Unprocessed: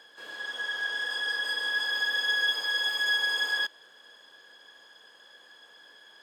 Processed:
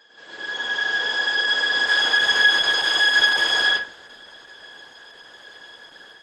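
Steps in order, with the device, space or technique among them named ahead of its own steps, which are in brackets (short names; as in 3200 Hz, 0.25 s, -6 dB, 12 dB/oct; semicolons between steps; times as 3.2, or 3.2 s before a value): speakerphone in a meeting room (reverb RT60 0.50 s, pre-delay 94 ms, DRR -4 dB; AGC gain up to 5.5 dB; Opus 12 kbps 48000 Hz)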